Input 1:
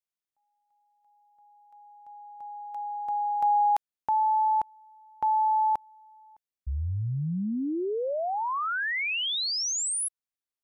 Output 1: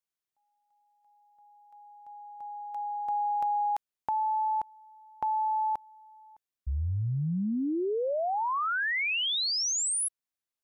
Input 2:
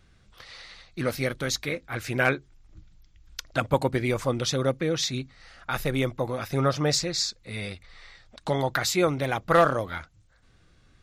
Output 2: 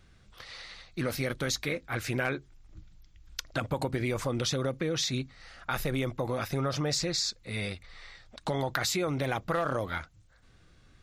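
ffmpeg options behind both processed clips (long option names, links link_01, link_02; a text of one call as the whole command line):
ffmpeg -i in.wav -af "acompressor=threshold=-27dB:ratio=6:attack=6.2:release=82:knee=1:detection=peak" out.wav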